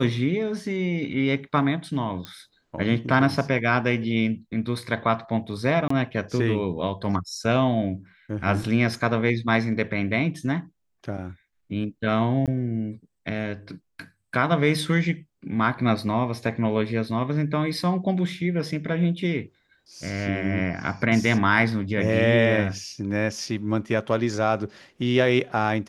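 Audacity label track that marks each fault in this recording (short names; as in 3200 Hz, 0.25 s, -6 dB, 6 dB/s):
2.250000	2.250000	pop -18 dBFS
5.880000	5.900000	gap 24 ms
12.460000	12.480000	gap 17 ms
23.410000	23.410000	gap 2.1 ms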